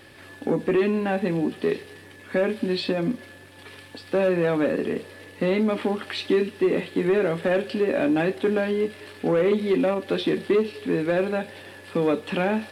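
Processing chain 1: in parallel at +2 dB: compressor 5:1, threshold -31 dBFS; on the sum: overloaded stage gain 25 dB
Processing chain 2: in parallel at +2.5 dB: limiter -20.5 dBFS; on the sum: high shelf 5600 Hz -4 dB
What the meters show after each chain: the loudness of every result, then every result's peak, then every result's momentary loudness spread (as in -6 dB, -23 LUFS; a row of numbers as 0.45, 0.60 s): -28.5, -20.0 LUFS; -25.0, -9.0 dBFS; 8, 12 LU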